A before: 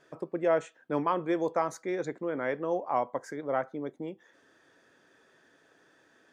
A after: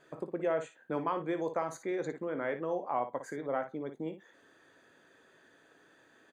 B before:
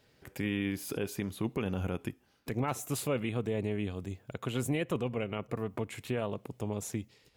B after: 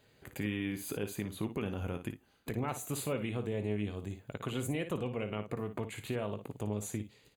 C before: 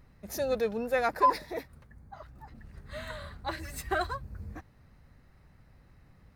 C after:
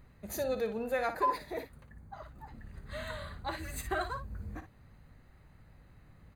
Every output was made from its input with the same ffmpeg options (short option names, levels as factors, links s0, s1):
-af "acompressor=threshold=0.0141:ratio=1.5,asuperstop=centerf=5400:order=4:qfactor=5.2,aecho=1:1:19|57:0.188|0.316"